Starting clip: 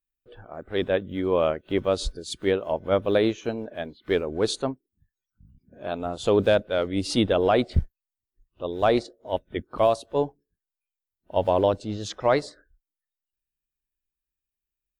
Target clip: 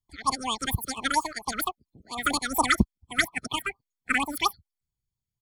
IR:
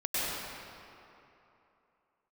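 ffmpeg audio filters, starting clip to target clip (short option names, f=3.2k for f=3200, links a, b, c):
-af "aecho=1:1:2.5:0.66,asetrate=122157,aresample=44100,afftfilt=real='re*(1-between(b*sr/1024,850*pow(1800/850,0.5+0.5*sin(2*PI*4.3*pts/sr))/1.41,850*pow(1800/850,0.5+0.5*sin(2*PI*4.3*pts/sr))*1.41))':imag='im*(1-between(b*sr/1024,850*pow(1800/850,0.5+0.5*sin(2*PI*4.3*pts/sr))/1.41,850*pow(1800/850,0.5+0.5*sin(2*PI*4.3*pts/sr))*1.41))':win_size=1024:overlap=0.75"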